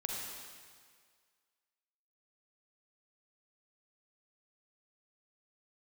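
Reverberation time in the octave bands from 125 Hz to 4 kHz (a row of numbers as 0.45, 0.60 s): 1.7, 1.7, 1.8, 1.9, 1.8, 1.7 s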